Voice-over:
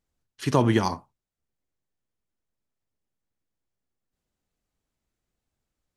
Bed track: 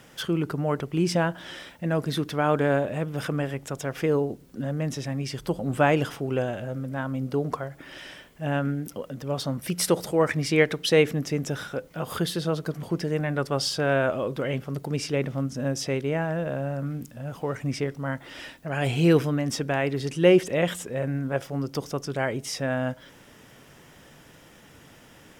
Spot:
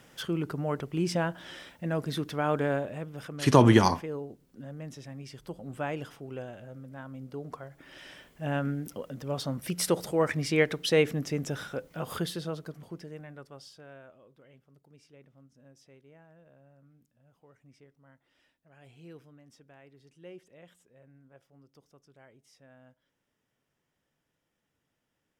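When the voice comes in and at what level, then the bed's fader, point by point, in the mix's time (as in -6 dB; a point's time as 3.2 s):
3.00 s, +2.5 dB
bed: 2.64 s -5 dB
3.36 s -13 dB
7.4 s -13 dB
8.29 s -4 dB
12.12 s -4 dB
14.18 s -30 dB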